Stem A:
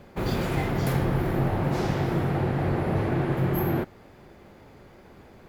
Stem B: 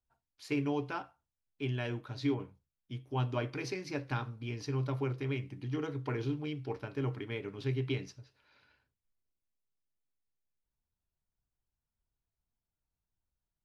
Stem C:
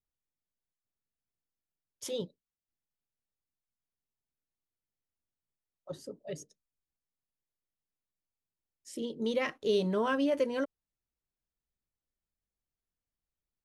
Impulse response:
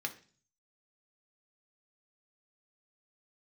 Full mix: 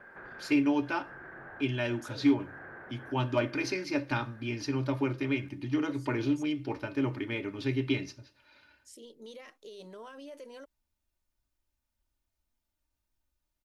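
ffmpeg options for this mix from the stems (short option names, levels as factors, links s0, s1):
-filter_complex "[0:a]acompressor=threshold=0.00891:ratio=2,lowpass=f=1600:t=q:w=13,volume=0.447[s0];[1:a]aecho=1:1:3.3:0.59,asoftclip=type=hard:threshold=0.0891,volume=1.33,asplit=3[s1][s2][s3];[s2]volume=0.335[s4];[2:a]volume=0.299[s5];[s3]apad=whole_len=241901[s6];[s0][s6]sidechaincompress=threshold=0.00447:ratio=8:attack=16:release=141[s7];[s7][s5]amix=inputs=2:normalize=0,bass=f=250:g=-12,treble=f=4000:g=7,alimiter=level_in=5.62:limit=0.0631:level=0:latency=1:release=34,volume=0.178,volume=1[s8];[3:a]atrim=start_sample=2205[s9];[s4][s9]afir=irnorm=-1:irlink=0[s10];[s1][s8][s10]amix=inputs=3:normalize=0"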